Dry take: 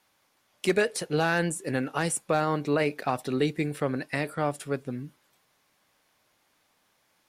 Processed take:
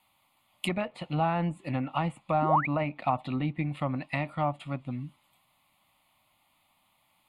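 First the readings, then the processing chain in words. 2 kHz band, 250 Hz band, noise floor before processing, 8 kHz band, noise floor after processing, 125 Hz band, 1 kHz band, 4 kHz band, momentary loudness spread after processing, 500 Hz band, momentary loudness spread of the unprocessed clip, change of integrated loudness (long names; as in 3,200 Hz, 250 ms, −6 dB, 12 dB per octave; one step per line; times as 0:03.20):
−7.0 dB, −2.0 dB, −70 dBFS, below −15 dB, −70 dBFS, +1.5 dB, +2.5 dB, −5.0 dB, 10 LU, −6.0 dB, 8 LU, −2.0 dB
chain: sound drawn into the spectrogram rise, 0:02.42–0:02.67, 260–2,600 Hz −24 dBFS
treble cut that deepens with the level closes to 1,600 Hz, closed at −23 dBFS
phaser with its sweep stopped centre 1,600 Hz, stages 6
level +3 dB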